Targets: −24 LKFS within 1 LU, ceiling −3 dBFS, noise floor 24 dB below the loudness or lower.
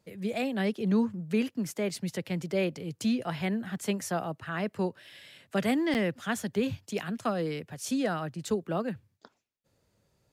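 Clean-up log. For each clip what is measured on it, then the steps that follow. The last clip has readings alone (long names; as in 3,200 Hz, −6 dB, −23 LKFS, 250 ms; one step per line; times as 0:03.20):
number of dropouts 1; longest dropout 8.7 ms; integrated loudness −31.5 LKFS; sample peak −16.5 dBFS; target loudness −24.0 LKFS
→ repair the gap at 0:05.94, 8.7 ms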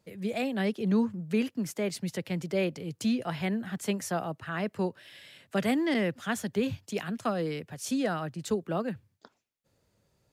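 number of dropouts 0; integrated loudness −31.5 LKFS; sample peak −16.5 dBFS; target loudness −24.0 LKFS
→ level +7.5 dB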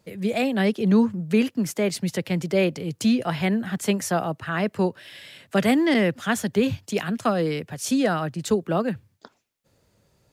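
integrated loudness −24.0 LKFS; sample peak −9.0 dBFS; background noise floor −67 dBFS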